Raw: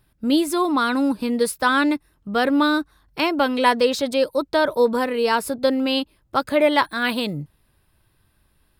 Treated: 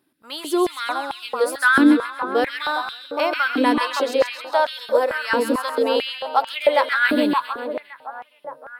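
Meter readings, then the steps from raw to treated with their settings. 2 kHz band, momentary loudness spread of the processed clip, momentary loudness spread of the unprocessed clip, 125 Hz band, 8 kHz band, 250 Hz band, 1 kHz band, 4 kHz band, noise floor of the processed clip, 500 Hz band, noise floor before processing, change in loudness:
+3.5 dB, 15 LU, 7 LU, n/a, -2.5 dB, -1.0 dB, +0.5 dB, -1.0 dB, -54 dBFS, 0.0 dB, -64 dBFS, 0.0 dB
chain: split-band echo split 1400 Hz, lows 0.568 s, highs 0.134 s, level -4.5 dB; stepped high-pass 4.5 Hz 290–2900 Hz; gain -4.5 dB

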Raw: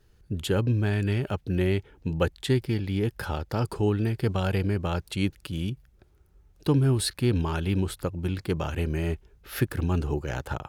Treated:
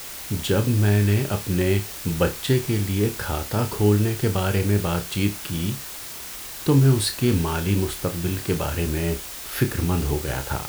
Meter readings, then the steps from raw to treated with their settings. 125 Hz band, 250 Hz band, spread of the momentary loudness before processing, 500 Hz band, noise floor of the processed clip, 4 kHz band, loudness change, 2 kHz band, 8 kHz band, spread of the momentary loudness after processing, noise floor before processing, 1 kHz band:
+4.5 dB, +4.5 dB, 8 LU, +4.5 dB, -36 dBFS, +6.0 dB, +4.5 dB, +5.0 dB, +10.5 dB, 9 LU, -61 dBFS, +4.5 dB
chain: added noise white -40 dBFS; flutter echo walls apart 5 m, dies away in 0.22 s; gain +3.5 dB

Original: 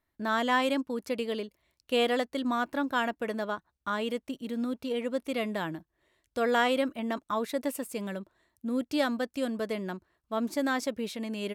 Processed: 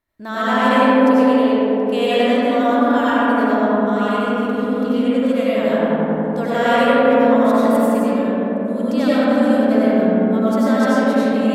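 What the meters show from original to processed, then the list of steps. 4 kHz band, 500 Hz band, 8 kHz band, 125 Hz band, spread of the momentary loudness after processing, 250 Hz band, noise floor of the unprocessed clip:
+7.5 dB, +15.5 dB, n/a, +17.5 dB, 7 LU, +17.0 dB, -82 dBFS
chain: on a send: darkening echo 92 ms, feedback 79%, low-pass 1600 Hz, level -3 dB; on the sum: digital reverb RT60 4 s, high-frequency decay 0.3×, pre-delay 55 ms, DRR -9.5 dB

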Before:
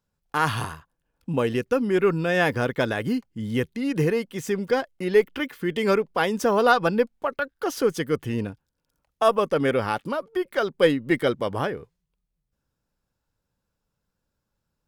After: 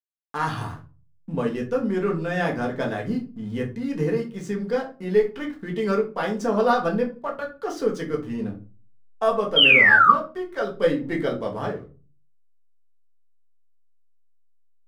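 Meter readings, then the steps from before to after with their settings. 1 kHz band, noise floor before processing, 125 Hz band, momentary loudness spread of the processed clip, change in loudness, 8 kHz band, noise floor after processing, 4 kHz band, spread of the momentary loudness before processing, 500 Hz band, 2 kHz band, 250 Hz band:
+2.0 dB, -81 dBFS, -1.5 dB, 16 LU, +2.0 dB, n/a, -56 dBFS, +9.5 dB, 8 LU, -1.5 dB, +6.5 dB, -1.0 dB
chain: LPF 8600 Hz 12 dB/oct; bell 2700 Hz -5.5 dB 0.63 oct; painted sound fall, 9.56–10.12, 1100–3300 Hz -11 dBFS; backlash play -42.5 dBFS; shoebox room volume 170 m³, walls furnished, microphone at 1.6 m; gain -6 dB

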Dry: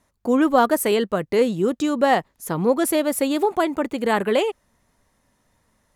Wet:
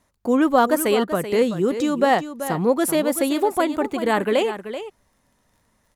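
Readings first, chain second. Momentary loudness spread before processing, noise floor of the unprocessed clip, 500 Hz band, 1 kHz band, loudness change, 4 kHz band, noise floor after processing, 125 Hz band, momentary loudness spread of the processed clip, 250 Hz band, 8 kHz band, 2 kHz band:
5 LU, -68 dBFS, 0.0 dB, +0.5 dB, 0.0 dB, +0.5 dB, -66 dBFS, +0.5 dB, 8 LU, +0.5 dB, +0.5 dB, +0.5 dB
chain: echo 0.383 s -11 dB; crackle 25/s -51 dBFS

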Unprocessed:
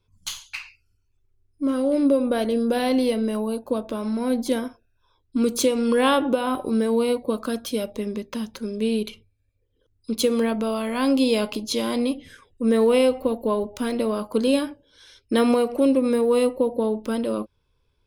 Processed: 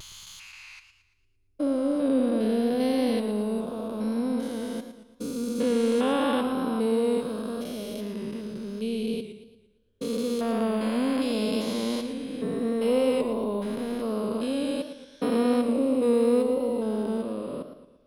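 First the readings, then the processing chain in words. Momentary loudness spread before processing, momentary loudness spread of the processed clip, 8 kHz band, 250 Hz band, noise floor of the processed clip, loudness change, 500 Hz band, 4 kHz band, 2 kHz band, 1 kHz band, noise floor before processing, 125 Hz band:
11 LU, 12 LU, -8.0 dB, -3.0 dB, -62 dBFS, -4.0 dB, -4.0 dB, -6.5 dB, -6.5 dB, -5.5 dB, -68 dBFS, n/a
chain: stepped spectrum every 0.4 s; vibrato 0.8 Hz 34 cents; warbling echo 0.114 s, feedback 46%, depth 112 cents, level -10 dB; gain -1.5 dB

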